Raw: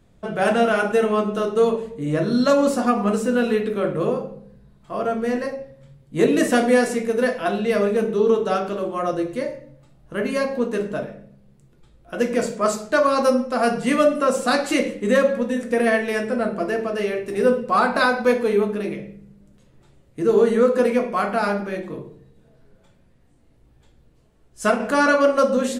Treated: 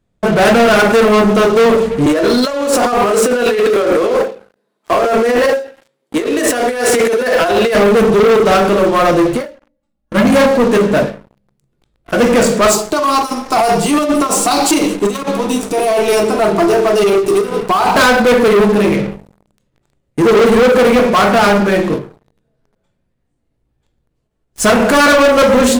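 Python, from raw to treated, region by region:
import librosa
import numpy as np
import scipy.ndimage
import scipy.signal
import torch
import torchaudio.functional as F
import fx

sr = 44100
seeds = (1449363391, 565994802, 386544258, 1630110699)

y = fx.chain(x, sr, fx.highpass(hz=310.0, slope=24),
    fx.over_compress(threshold_db=-29.0, ratio=-1.0), at=(2.06, 7.75))
y = fx.chain(y, sr, fx.peak_eq(hz=200.0, db=7.5, octaves=0.42),
    fx.comb(ms=3.6, depth=0.82),
    fx.upward_expand(threshold_db=-36.0, expansion=1.5), at=(9.48, 10.49))
y = fx.chain(y, sr, fx.peak_eq(hz=140.0, db=-13.0, octaves=0.37),
    fx.over_compress(threshold_db=-22.0, ratio=-1.0),
    fx.fixed_phaser(hz=350.0, stages=8), at=(12.71, 17.96))
y = fx.leveller(y, sr, passes=5)
y = fx.end_taper(y, sr, db_per_s=150.0)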